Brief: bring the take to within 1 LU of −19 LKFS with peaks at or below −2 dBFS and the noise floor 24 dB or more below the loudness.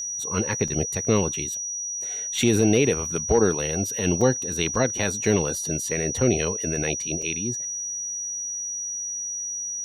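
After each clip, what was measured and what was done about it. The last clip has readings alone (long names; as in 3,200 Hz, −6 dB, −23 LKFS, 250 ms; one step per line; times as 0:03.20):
number of dropouts 4; longest dropout 4.1 ms; interfering tone 5,800 Hz; level of the tone −28 dBFS; integrated loudness −24.0 LKFS; sample peak −8.0 dBFS; target loudness −19.0 LKFS
→ repair the gap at 0:00.68/0:04.21/0:04.75/0:07.22, 4.1 ms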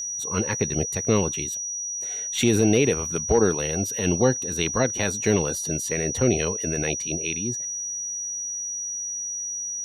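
number of dropouts 0; interfering tone 5,800 Hz; level of the tone −28 dBFS
→ notch filter 5,800 Hz, Q 30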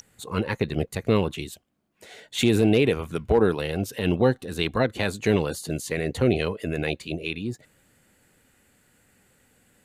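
interfering tone none found; integrated loudness −25.0 LKFS; sample peak −8.5 dBFS; target loudness −19.0 LKFS
→ level +6 dB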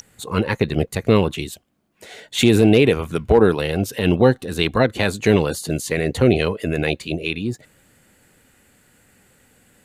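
integrated loudness −19.0 LKFS; sample peak −2.5 dBFS; background noise floor −61 dBFS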